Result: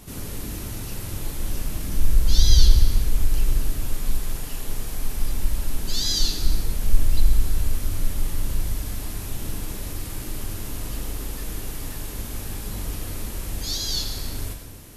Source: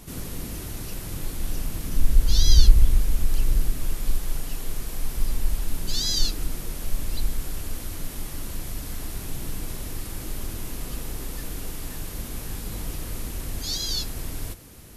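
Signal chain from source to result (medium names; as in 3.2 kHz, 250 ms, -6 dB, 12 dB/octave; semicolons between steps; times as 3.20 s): 6.42–8.73 s: bass shelf 110 Hz +9 dB; gated-style reverb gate 480 ms falling, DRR 3.5 dB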